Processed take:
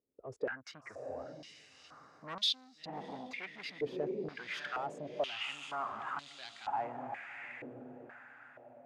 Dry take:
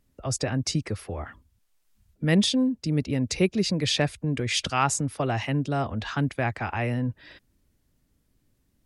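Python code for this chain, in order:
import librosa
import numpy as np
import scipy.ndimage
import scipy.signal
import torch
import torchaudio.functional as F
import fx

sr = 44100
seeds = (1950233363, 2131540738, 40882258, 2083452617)

y = fx.wiener(x, sr, points=9)
y = fx.noise_reduce_blind(y, sr, reduce_db=8)
y = fx.echo_diffused(y, sr, ms=671, feedback_pct=43, wet_db=-8)
y = 10.0 ** (-25.5 / 20.0) * np.tanh(y / 10.0 ** (-25.5 / 20.0))
y = fx.filter_held_bandpass(y, sr, hz=2.1, low_hz=440.0, high_hz=3900.0)
y = F.gain(torch.from_numpy(y), 3.5).numpy()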